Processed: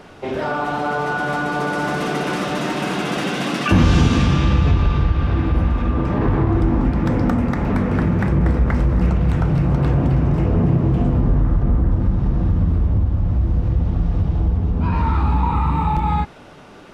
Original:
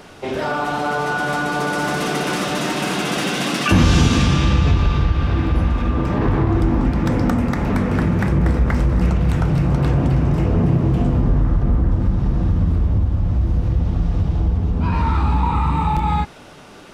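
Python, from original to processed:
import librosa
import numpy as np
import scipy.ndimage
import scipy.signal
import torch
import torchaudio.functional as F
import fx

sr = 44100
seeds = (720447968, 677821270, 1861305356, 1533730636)

y = fx.high_shelf(x, sr, hz=3800.0, db=-9.0)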